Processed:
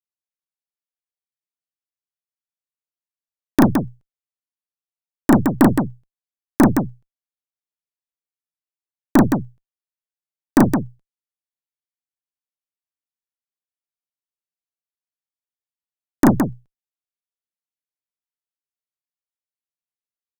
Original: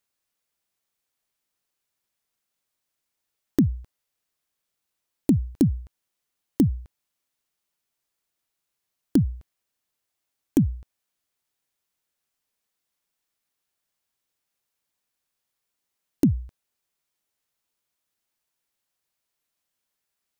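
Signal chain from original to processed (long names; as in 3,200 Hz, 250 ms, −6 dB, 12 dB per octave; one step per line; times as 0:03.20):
harmonic generator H 3 −19 dB, 7 −20 dB, 8 −16 dB, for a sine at −8 dBFS
loudspeakers that aren't time-aligned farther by 12 metres −1 dB, 57 metres −5 dB
level +6 dB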